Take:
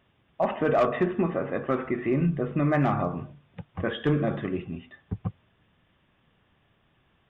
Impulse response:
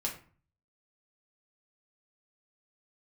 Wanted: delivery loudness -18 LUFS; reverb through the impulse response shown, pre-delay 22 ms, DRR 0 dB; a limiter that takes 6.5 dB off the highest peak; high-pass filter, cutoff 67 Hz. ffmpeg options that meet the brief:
-filter_complex "[0:a]highpass=67,alimiter=limit=-19.5dB:level=0:latency=1,asplit=2[a][b];[1:a]atrim=start_sample=2205,adelay=22[c];[b][c]afir=irnorm=-1:irlink=0,volume=-3dB[d];[a][d]amix=inputs=2:normalize=0,volume=8.5dB"

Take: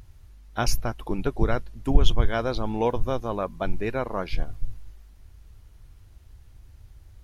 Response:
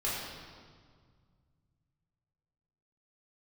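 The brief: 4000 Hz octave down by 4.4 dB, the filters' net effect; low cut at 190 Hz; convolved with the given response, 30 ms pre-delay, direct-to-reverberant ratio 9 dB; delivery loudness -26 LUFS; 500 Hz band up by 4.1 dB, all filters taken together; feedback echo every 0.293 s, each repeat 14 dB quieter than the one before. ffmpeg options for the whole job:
-filter_complex "[0:a]highpass=190,equalizer=f=500:t=o:g=5,equalizer=f=4k:t=o:g=-6,aecho=1:1:293|586:0.2|0.0399,asplit=2[a][b];[1:a]atrim=start_sample=2205,adelay=30[c];[b][c]afir=irnorm=-1:irlink=0,volume=-16dB[d];[a][d]amix=inputs=2:normalize=0,volume=0.5dB"

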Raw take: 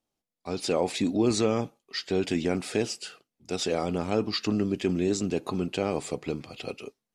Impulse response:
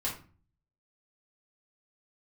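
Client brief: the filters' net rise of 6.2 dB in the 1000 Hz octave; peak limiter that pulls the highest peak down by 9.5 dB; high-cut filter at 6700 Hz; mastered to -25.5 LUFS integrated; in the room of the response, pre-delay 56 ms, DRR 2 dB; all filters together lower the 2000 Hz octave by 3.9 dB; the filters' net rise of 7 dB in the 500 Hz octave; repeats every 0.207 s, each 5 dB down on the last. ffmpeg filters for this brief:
-filter_complex "[0:a]lowpass=6.7k,equalizer=f=500:t=o:g=7.5,equalizer=f=1k:t=o:g=7,equalizer=f=2k:t=o:g=-7.5,alimiter=limit=-16dB:level=0:latency=1,aecho=1:1:207|414|621|828|1035|1242|1449:0.562|0.315|0.176|0.0988|0.0553|0.031|0.0173,asplit=2[a][b];[1:a]atrim=start_sample=2205,adelay=56[c];[b][c]afir=irnorm=-1:irlink=0,volume=-6.5dB[d];[a][d]amix=inputs=2:normalize=0,volume=-1dB"

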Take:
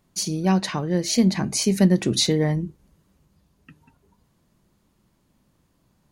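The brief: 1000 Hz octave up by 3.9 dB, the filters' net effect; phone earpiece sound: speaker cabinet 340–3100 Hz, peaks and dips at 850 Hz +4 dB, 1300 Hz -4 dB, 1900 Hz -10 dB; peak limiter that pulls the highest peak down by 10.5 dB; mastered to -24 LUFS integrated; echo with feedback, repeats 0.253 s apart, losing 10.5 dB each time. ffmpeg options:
-af "equalizer=f=1k:t=o:g=3.5,alimiter=limit=-16dB:level=0:latency=1,highpass=340,equalizer=f=850:t=q:w=4:g=4,equalizer=f=1.3k:t=q:w=4:g=-4,equalizer=f=1.9k:t=q:w=4:g=-10,lowpass=f=3.1k:w=0.5412,lowpass=f=3.1k:w=1.3066,aecho=1:1:253|506|759:0.299|0.0896|0.0269,volume=7.5dB"

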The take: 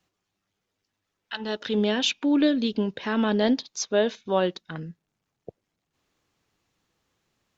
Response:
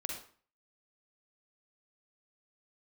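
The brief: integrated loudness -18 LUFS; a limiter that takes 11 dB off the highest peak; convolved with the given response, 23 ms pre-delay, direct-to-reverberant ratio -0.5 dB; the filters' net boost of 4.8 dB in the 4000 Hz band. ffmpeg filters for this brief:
-filter_complex "[0:a]equalizer=f=4k:t=o:g=6,alimiter=limit=-18.5dB:level=0:latency=1,asplit=2[a][b];[1:a]atrim=start_sample=2205,adelay=23[c];[b][c]afir=irnorm=-1:irlink=0,volume=0dB[d];[a][d]amix=inputs=2:normalize=0,volume=7.5dB"

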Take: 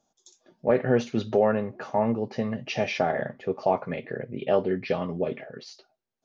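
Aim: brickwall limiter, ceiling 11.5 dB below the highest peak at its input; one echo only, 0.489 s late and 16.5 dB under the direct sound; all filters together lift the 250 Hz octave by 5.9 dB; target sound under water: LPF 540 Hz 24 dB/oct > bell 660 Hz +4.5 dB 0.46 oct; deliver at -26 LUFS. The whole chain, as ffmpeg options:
-af "equalizer=f=250:t=o:g=7,alimiter=limit=-19dB:level=0:latency=1,lowpass=f=540:w=0.5412,lowpass=f=540:w=1.3066,equalizer=f=660:t=o:w=0.46:g=4.5,aecho=1:1:489:0.15,volume=5dB"

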